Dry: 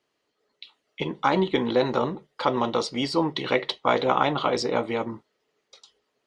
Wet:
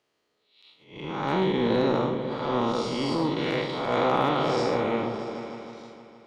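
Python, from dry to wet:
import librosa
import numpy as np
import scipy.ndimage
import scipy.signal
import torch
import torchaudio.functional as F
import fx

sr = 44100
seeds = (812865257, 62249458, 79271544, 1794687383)

p1 = fx.spec_blur(x, sr, span_ms=207.0)
p2 = fx.transient(p1, sr, attack_db=-11, sustain_db=-7)
p3 = 10.0 ** (-16.0 / 20.0) * (np.abs((p2 / 10.0 ** (-16.0 / 20.0) + 3.0) % 4.0 - 2.0) - 1.0)
p4 = p2 + (p3 * 10.0 ** (-6.0 / 20.0))
y = fx.echo_opening(p4, sr, ms=155, hz=200, octaves=2, feedback_pct=70, wet_db=-6)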